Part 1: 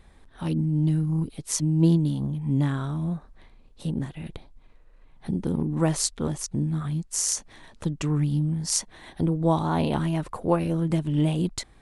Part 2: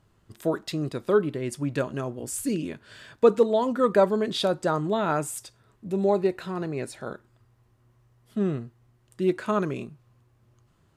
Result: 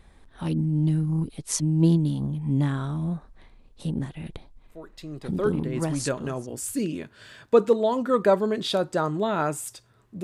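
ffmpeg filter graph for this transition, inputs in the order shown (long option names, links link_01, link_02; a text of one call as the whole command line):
ffmpeg -i cue0.wav -i cue1.wav -filter_complex "[0:a]apad=whole_dur=10.23,atrim=end=10.23,atrim=end=6.58,asetpts=PTS-STARTPTS[link_01];[1:a]atrim=start=0.32:end=5.93,asetpts=PTS-STARTPTS[link_02];[link_01][link_02]acrossfade=duration=1.96:curve1=qsin:curve2=qsin" out.wav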